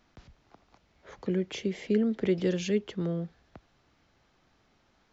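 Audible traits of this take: noise floor -68 dBFS; spectral tilt -6.5 dB/octave

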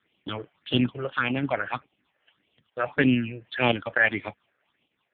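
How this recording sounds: a quantiser's noise floor 10-bit, dither triangular; random-step tremolo; phasing stages 6, 1.7 Hz, lowest notch 230–1500 Hz; AMR-NB

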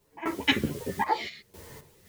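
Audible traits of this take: phasing stages 2, 1.3 Hz, lowest notch 800–4300 Hz; a quantiser's noise floor 10-bit, dither triangular; random-step tremolo 3.9 Hz, depth 95%; a shimmering, thickened sound

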